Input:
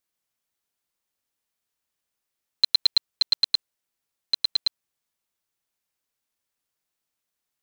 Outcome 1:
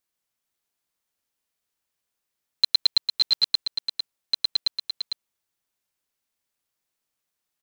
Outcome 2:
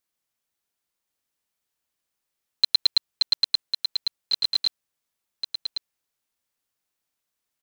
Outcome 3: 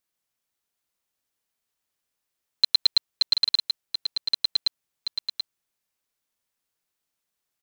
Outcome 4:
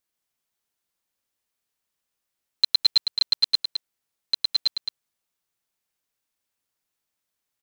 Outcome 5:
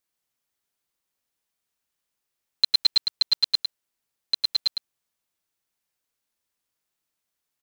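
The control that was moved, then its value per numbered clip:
delay, time: 452 ms, 1100 ms, 732 ms, 212 ms, 104 ms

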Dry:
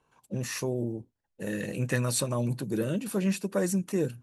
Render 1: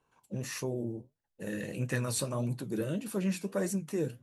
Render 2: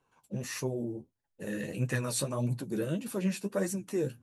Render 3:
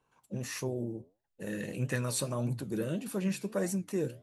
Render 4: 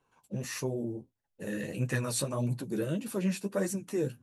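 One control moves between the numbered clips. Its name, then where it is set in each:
flange, regen: -66%, +21%, +79%, -10%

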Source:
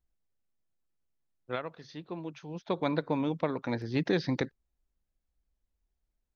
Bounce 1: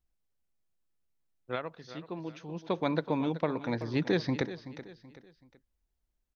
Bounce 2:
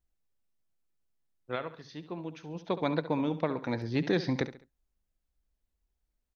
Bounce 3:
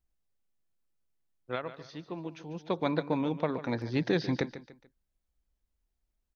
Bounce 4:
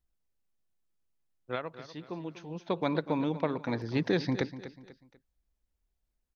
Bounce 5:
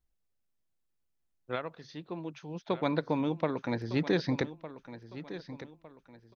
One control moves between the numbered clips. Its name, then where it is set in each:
feedback delay, time: 379 ms, 69 ms, 145 ms, 245 ms, 1207 ms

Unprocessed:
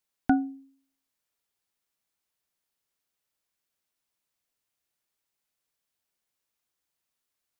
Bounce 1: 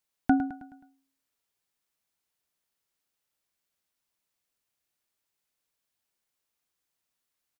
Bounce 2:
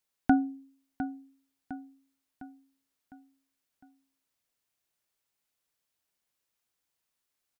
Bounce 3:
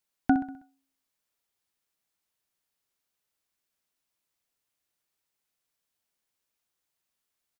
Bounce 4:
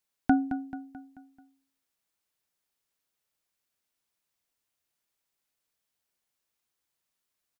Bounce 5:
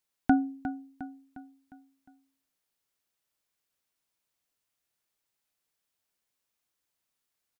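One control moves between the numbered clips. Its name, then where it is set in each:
feedback delay, time: 106 ms, 706 ms, 64 ms, 218 ms, 356 ms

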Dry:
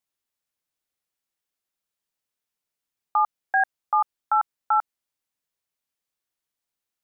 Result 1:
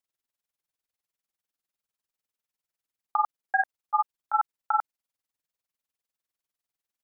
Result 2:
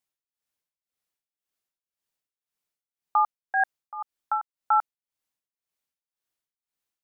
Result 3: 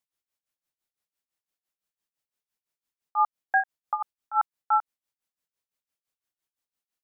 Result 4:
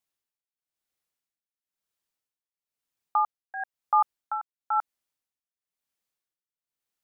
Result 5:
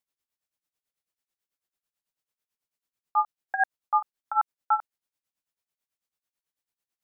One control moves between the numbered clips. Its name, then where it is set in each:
tremolo, rate: 20 Hz, 1.9 Hz, 5.9 Hz, 1 Hz, 9.1 Hz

